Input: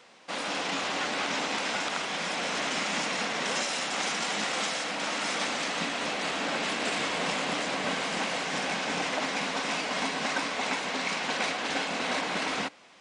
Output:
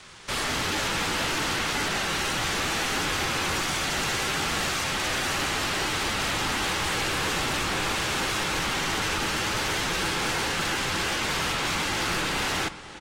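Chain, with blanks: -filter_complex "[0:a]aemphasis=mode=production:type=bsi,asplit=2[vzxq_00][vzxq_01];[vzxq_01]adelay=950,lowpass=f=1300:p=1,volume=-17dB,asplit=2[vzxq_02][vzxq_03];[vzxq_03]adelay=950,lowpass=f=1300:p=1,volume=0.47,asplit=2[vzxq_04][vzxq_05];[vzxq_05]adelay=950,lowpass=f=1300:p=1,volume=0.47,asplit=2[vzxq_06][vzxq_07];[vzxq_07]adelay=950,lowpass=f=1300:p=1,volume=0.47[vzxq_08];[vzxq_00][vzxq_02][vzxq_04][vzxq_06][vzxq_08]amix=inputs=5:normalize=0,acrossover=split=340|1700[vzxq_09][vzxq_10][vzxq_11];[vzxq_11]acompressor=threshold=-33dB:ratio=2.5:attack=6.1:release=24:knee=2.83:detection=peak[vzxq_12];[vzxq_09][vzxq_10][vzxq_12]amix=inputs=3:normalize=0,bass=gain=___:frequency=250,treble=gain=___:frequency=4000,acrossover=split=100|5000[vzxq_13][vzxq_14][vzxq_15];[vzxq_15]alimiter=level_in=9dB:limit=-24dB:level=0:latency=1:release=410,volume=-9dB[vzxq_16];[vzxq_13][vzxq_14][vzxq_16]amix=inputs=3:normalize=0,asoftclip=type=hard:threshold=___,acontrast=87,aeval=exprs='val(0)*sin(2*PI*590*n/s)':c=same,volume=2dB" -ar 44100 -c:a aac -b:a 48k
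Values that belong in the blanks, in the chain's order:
6, -3, -33dB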